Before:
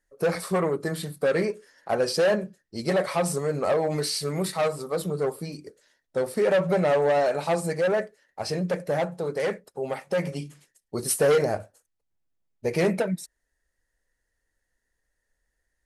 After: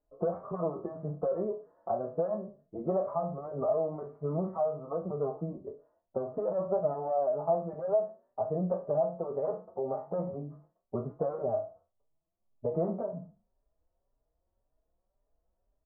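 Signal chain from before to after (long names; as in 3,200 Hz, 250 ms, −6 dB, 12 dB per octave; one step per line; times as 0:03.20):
peak hold with a decay on every bin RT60 0.31 s
parametric band 650 Hz +11 dB 0.22 octaves
downward compressor 3 to 1, threshold −31 dBFS, peak gain reduction 14.5 dB
Chebyshev low-pass filter 1,200 Hz, order 5
barber-pole flanger 4.5 ms +1.9 Hz
level +3 dB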